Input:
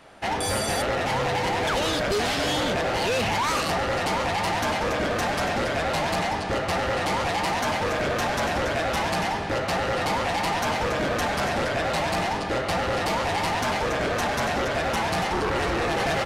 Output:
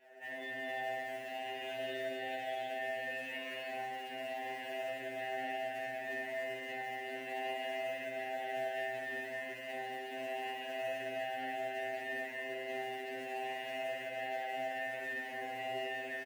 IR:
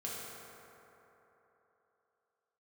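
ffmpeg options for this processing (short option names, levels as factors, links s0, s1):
-filter_complex "[0:a]asplit=3[s0][s1][s2];[s0]bandpass=f=530:t=q:w=8,volume=1[s3];[s1]bandpass=f=1840:t=q:w=8,volume=0.501[s4];[s2]bandpass=f=2480:t=q:w=8,volume=0.355[s5];[s3][s4][s5]amix=inputs=3:normalize=0,asplit=2[s6][s7];[s7]adelay=270,highpass=300,lowpass=3400,asoftclip=type=hard:threshold=0.0335,volume=0.398[s8];[s6][s8]amix=inputs=2:normalize=0,acrossover=split=180|3000[s9][s10][s11];[s10]acompressor=threshold=0.002:ratio=2.5[s12];[s9][s12][s11]amix=inputs=3:normalize=0,acrossover=split=180|3000[s13][s14][s15];[s14]equalizer=f=510:t=o:w=0.29:g=-5[s16];[s15]acrusher=bits=2:mix=0:aa=0.5[s17];[s13][s16][s17]amix=inputs=3:normalize=0[s18];[1:a]atrim=start_sample=2205,asetrate=61740,aresample=44100[s19];[s18][s19]afir=irnorm=-1:irlink=0,asplit=2[s20][s21];[s21]acrusher=bits=2:mode=log:mix=0:aa=0.000001,volume=0.376[s22];[s20][s22]amix=inputs=2:normalize=0,equalizer=f=76:t=o:w=0.22:g=-9.5,afreqshift=63,afftfilt=real='re*2.45*eq(mod(b,6),0)':imag='im*2.45*eq(mod(b,6),0)':win_size=2048:overlap=0.75,volume=2.66"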